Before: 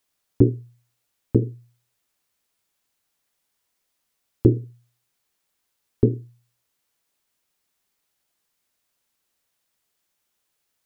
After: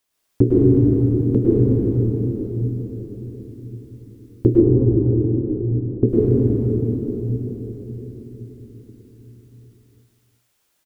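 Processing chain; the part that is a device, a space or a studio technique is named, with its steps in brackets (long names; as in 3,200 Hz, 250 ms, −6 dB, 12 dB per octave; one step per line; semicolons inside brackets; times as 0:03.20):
cave (single-tap delay 368 ms −11 dB; convolution reverb RT60 4.6 s, pre-delay 99 ms, DRR −7.5 dB)
0:04.60–0:06.09: low-pass filter 1,000 Hz 12 dB per octave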